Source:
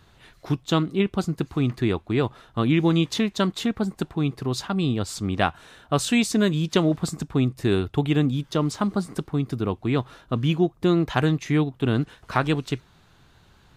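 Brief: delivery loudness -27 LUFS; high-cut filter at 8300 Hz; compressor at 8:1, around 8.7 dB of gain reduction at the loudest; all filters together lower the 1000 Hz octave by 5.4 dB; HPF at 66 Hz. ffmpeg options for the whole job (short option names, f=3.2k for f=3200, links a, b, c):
-af "highpass=66,lowpass=8.3k,equalizer=f=1k:t=o:g=-7.5,acompressor=threshold=-25dB:ratio=8,volume=4dB"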